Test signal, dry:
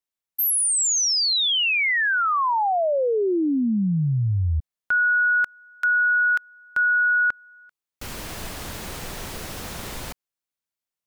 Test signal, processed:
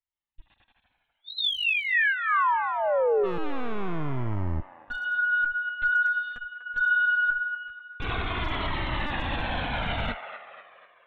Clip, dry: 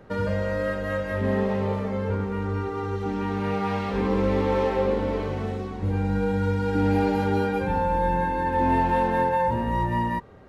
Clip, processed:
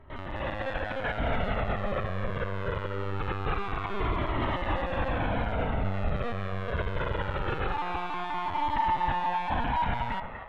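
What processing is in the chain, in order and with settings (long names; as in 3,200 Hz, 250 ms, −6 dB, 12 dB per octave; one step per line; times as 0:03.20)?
tube saturation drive 38 dB, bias 0.75
linear-prediction vocoder at 8 kHz pitch kept
in parallel at −3.5 dB: asymmetric clip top −35 dBFS
on the sum: dynamic equaliser 1,200 Hz, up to +4 dB, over −44 dBFS, Q 1
automatic gain control gain up to 13.5 dB
brickwall limiter −16.5 dBFS
on a send: delay with a band-pass on its return 245 ms, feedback 49%, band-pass 1,200 Hz, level −7 dB
on the sum: flanger whose copies keep moving one way falling 0.23 Hz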